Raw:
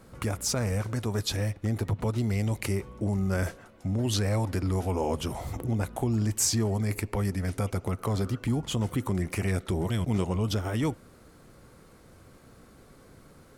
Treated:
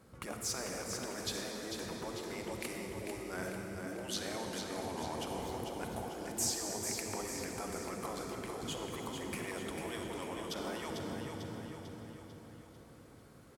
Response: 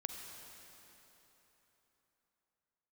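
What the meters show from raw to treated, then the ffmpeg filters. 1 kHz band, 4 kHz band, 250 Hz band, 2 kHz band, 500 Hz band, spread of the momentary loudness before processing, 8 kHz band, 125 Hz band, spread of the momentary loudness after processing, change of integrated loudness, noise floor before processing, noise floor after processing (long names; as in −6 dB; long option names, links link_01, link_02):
−5.0 dB, −5.0 dB, −12.0 dB, −5.0 dB, −7.5 dB, 4 LU, −5.5 dB, −20.5 dB, 12 LU, −10.5 dB, −54 dBFS, −56 dBFS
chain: -filter_complex "[1:a]atrim=start_sample=2205[link_01];[0:a][link_01]afir=irnorm=-1:irlink=0,afftfilt=real='re*lt(hypot(re,im),0.141)':imag='im*lt(hypot(re,im),0.141)':win_size=1024:overlap=0.75,highpass=49,aecho=1:1:446|892|1338|1784|2230|2676:0.501|0.256|0.13|0.0665|0.0339|0.0173,volume=-5dB"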